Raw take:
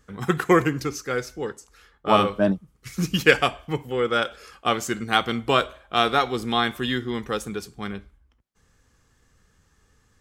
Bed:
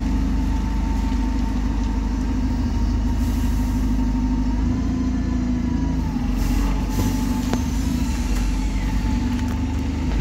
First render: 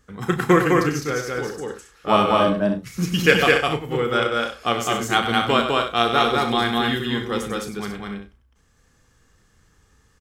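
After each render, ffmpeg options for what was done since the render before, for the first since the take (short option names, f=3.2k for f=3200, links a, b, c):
-filter_complex "[0:a]asplit=2[a][b];[b]adelay=34,volume=-9.5dB[c];[a][c]amix=inputs=2:normalize=0,aecho=1:1:96.21|207|271.1:0.355|0.794|0.355"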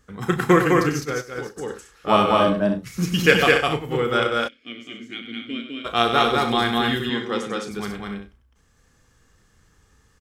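-filter_complex "[0:a]asplit=3[a][b][c];[a]afade=t=out:st=1.04:d=0.02[d];[b]agate=range=-33dB:threshold=-22dB:ratio=3:release=100:detection=peak,afade=t=in:st=1.04:d=0.02,afade=t=out:st=1.56:d=0.02[e];[c]afade=t=in:st=1.56:d=0.02[f];[d][e][f]amix=inputs=3:normalize=0,asplit=3[g][h][i];[g]afade=t=out:st=4.47:d=0.02[j];[h]asplit=3[k][l][m];[k]bandpass=f=270:t=q:w=8,volume=0dB[n];[l]bandpass=f=2.29k:t=q:w=8,volume=-6dB[o];[m]bandpass=f=3.01k:t=q:w=8,volume=-9dB[p];[n][o][p]amix=inputs=3:normalize=0,afade=t=in:st=4.47:d=0.02,afade=t=out:st=5.84:d=0.02[q];[i]afade=t=in:st=5.84:d=0.02[r];[j][q][r]amix=inputs=3:normalize=0,asettb=1/sr,asplit=3[s][t][u];[s]atrim=end=7.094[v];[t]atrim=start=7.09:end=7.71,asetpts=PTS-STARTPTS,afade=t=in:d=0.004:c=qsin,afade=t=out:st=0.616:d=0.004:c=qsin,highpass=180,lowpass=6.9k[w];[u]atrim=start=7.706[x];[v][w]acrossfade=d=0.004:c1=hsin:c2=qsin[y];[y][x]acrossfade=d=0.004:c1=qsin:c2=hsin"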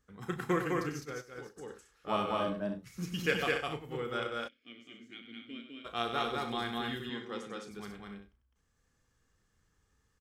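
-af "volume=-15dB"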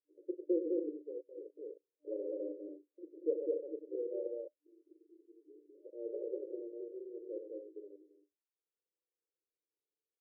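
-af "afwtdn=0.00891,afftfilt=real='re*between(b*sr/4096,300,600)':imag='im*between(b*sr/4096,300,600)':win_size=4096:overlap=0.75"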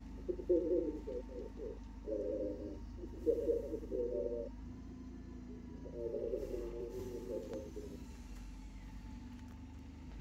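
-filter_complex "[1:a]volume=-28.5dB[a];[0:a][a]amix=inputs=2:normalize=0"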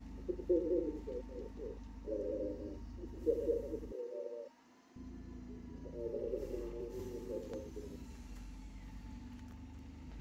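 -filter_complex "[0:a]asettb=1/sr,asplit=3[a][b][c];[a]atrim=end=3.924[d];[b]atrim=start=3.92:end=4.96,asetpts=PTS-STARTPTS,afade=t=in:d=0.004:c=qsin,afade=t=out:st=1.036:d=0.004:c=qsin,highpass=580[e];[c]atrim=start=4.956[f];[d][e]acrossfade=d=0.004:c1=hsin:c2=qsin[g];[g][f]acrossfade=d=0.004:c1=qsin:c2=hsin"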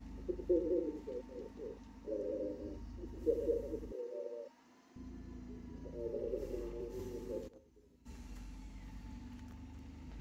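-filter_complex "[0:a]asettb=1/sr,asplit=3[a][b][c];[a]atrim=end=0.724[d];[b]atrim=start=0.72:end=2.63,asetpts=PTS-STARTPTS,afade=t=in:d=0.004:c=qsin,afade=t=out:st=1.906:d=0.004:c=qsin,highpass=f=120:p=1[e];[c]atrim=start=2.626[f];[d][e]acrossfade=d=0.004:c1=hsin:c2=qsin[g];[g][f]acrossfade=d=0.004:c1=qsin:c2=hsin,asplit=3[h][i][j];[h]afade=t=out:st=7.47:d=0.02[k];[i]agate=range=-18dB:threshold=-40dB:ratio=16:release=100:detection=peak,afade=t=in:st=7.47:d=0.02,afade=t=out:st=8.05:d=0.02[l];[j]afade=t=in:st=8.05:d=0.02[m];[k][l][m]amix=inputs=3:normalize=0"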